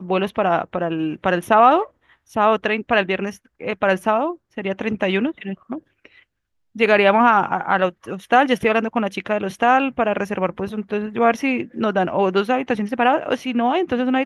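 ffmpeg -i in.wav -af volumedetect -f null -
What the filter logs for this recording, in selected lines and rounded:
mean_volume: -19.8 dB
max_volume: -1.9 dB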